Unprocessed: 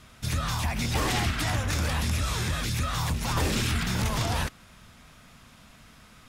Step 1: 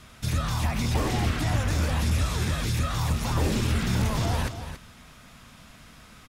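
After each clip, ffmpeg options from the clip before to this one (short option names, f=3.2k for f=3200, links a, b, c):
-filter_complex "[0:a]acrossover=split=750[a][b];[b]alimiter=level_in=5.5dB:limit=-24dB:level=0:latency=1:release=24,volume=-5.5dB[c];[a][c]amix=inputs=2:normalize=0,aecho=1:1:280:0.299,volume=2.5dB"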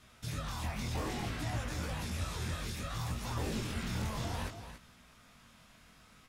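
-af "flanger=delay=16:depth=7.8:speed=0.61,lowshelf=f=190:g=-3.5,volume=-6.5dB"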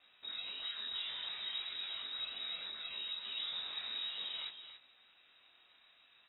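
-af "lowpass=f=3.3k:t=q:w=0.5098,lowpass=f=3.3k:t=q:w=0.6013,lowpass=f=3.3k:t=q:w=0.9,lowpass=f=3.3k:t=q:w=2.563,afreqshift=-3900,volume=-5.5dB"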